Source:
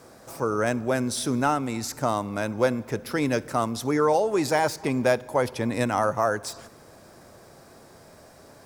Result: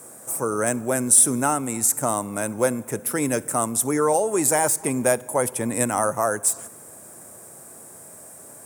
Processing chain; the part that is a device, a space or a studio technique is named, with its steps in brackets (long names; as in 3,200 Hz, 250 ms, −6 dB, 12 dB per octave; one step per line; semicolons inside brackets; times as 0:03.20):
budget condenser microphone (high-pass filter 110 Hz; high shelf with overshoot 6,400 Hz +12.5 dB, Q 3)
level +1 dB